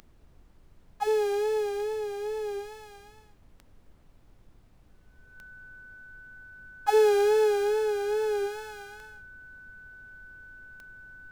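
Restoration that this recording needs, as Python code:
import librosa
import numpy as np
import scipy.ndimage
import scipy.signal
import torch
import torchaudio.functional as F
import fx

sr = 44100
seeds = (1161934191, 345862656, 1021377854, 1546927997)

y = fx.fix_declick_ar(x, sr, threshold=10.0)
y = fx.notch(y, sr, hz=1500.0, q=30.0)
y = fx.noise_reduce(y, sr, print_start_s=4.56, print_end_s=5.06, reduce_db=16.0)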